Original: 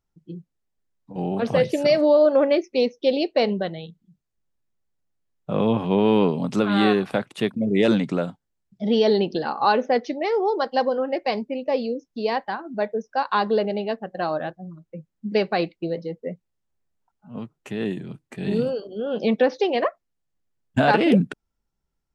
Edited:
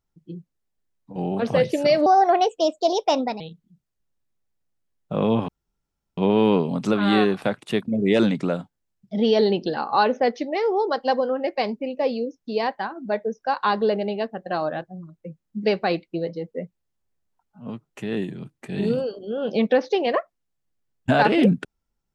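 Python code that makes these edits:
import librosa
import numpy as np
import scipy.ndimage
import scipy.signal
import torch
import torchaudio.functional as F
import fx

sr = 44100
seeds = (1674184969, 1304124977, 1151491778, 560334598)

y = fx.edit(x, sr, fx.speed_span(start_s=2.06, length_s=1.72, speed=1.28),
    fx.insert_room_tone(at_s=5.86, length_s=0.69), tone=tone)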